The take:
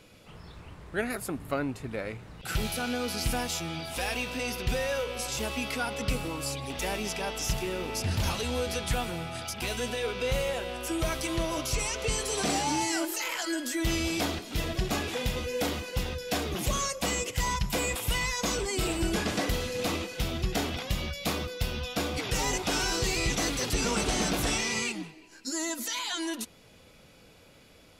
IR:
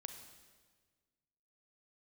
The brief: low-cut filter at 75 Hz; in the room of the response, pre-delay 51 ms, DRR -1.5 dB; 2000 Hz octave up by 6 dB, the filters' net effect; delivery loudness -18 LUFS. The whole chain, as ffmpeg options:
-filter_complex "[0:a]highpass=75,equalizer=f=2k:t=o:g=7.5,asplit=2[a][b];[1:a]atrim=start_sample=2205,adelay=51[c];[b][c]afir=irnorm=-1:irlink=0,volume=5.5dB[d];[a][d]amix=inputs=2:normalize=0,volume=6.5dB"

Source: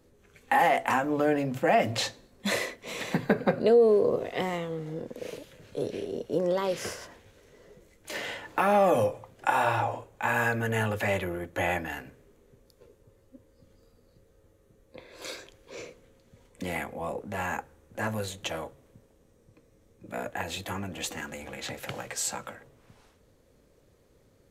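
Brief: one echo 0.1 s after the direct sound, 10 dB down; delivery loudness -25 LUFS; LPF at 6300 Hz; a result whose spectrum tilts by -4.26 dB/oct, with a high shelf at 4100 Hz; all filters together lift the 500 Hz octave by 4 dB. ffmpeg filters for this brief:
-af "lowpass=6.3k,equalizer=f=500:t=o:g=4.5,highshelf=f=4.1k:g=8.5,aecho=1:1:100:0.316,volume=0.5dB"

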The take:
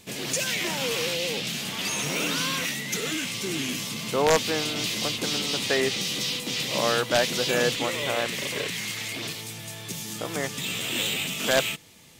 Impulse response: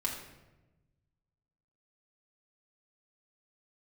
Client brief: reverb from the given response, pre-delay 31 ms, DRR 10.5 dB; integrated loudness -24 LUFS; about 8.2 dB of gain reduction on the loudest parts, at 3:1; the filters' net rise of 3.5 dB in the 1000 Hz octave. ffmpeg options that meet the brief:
-filter_complex "[0:a]equalizer=f=1k:t=o:g=4.5,acompressor=threshold=-26dB:ratio=3,asplit=2[a][b];[1:a]atrim=start_sample=2205,adelay=31[c];[b][c]afir=irnorm=-1:irlink=0,volume=-14.5dB[d];[a][d]amix=inputs=2:normalize=0,volume=4dB"

